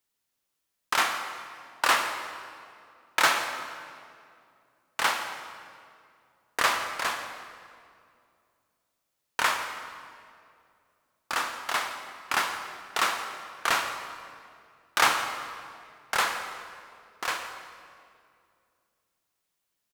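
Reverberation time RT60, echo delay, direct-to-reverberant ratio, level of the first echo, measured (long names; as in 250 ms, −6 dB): 2.4 s, 168 ms, 5.5 dB, −17.0 dB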